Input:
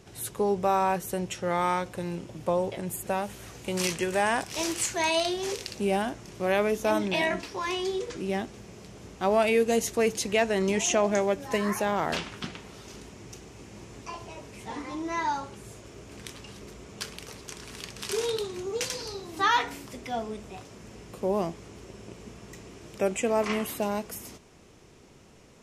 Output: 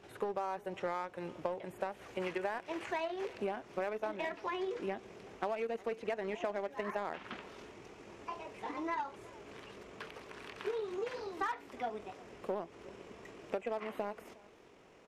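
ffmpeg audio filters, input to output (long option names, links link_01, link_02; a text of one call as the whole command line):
ffmpeg -i in.wav -filter_complex "[0:a]acrossover=split=2600[link_01][link_02];[link_02]acompressor=threshold=-46dB:ratio=4:attack=1:release=60[link_03];[link_01][link_03]amix=inputs=2:normalize=0,bass=frequency=250:gain=-13,treble=frequency=4000:gain=-13,atempo=1.7,asplit=2[link_04][link_05];[link_05]acrusher=bits=3:mix=0:aa=0.5,volume=-11dB[link_06];[link_04][link_06]amix=inputs=2:normalize=0,acompressor=threshold=-32dB:ratio=10,asplit=2[link_07][link_08];[link_08]aecho=0:1:362:0.0708[link_09];[link_07][link_09]amix=inputs=2:normalize=0,volume=-1dB" out.wav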